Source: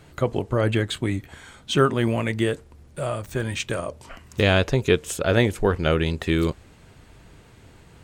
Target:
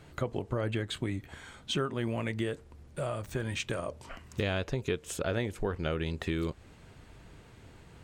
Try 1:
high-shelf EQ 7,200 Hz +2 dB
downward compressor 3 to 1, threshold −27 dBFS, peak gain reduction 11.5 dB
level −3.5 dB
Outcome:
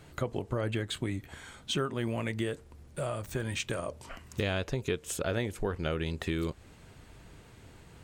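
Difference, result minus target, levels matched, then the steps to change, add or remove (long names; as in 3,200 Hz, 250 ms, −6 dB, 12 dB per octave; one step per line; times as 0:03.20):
8,000 Hz band +3.0 dB
change: high-shelf EQ 7,200 Hz −4.5 dB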